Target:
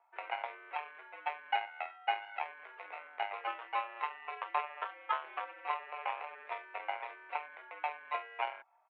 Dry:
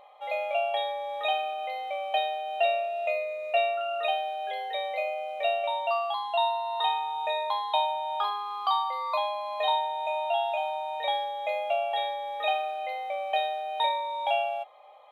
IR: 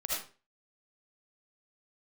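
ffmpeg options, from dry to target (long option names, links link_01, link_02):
-filter_complex "[0:a]asplit=2[link_01][link_02];[link_02]alimiter=level_in=0.5dB:limit=-24dB:level=0:latency=1:release=18,volume=-0.5dB,volume=-2.5dB[link_03];[link_01][link_03]amix=inputs=2:normalize=0,aeval=exprs='0.266*(cos(1*acos(clip(val(0)/0.266,-1,1)))-cos(1*PI/2))+0.0266*(cos(2*acos(clip(val(0)/0.266,-1,1)))-cos(2*PI/2))+0.0944*(cos(3*acos(clip(val(0)/0.266,-1,1)))-cos(3*PI/2))+0.00473*(cos(6*acos(clip(val(0)/0.266,-1,1)))-cos(6*PI/2))+0.00944*(cos(8*acos(clip(val(0)/0.266,-1,1)))-cos(8*PI/2))':channel_layout=same,asoftclip=type=tanh:threshold=-17.5dB,highpass=frequency=310:width_type=q:width=0.5412,highpass=frequency=310:width_type=q:width=1.307,lowpass=frequency=2400:width_type=q:width=0.5176,lowpass=frequency=2400:width_type=q:width=0.7071,lowpass=frequency=2400:width_type=q:width=1.932,afreqshift=120,atempo=1.7,volume=2dB"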